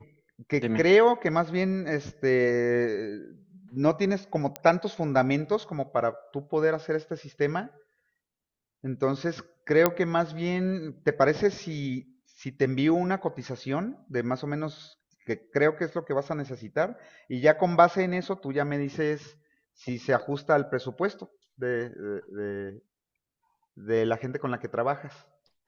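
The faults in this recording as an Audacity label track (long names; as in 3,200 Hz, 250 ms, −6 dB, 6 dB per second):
4.560000	4.560000	click −15 dBFS
9.860000	9.860000	click −6 dBFS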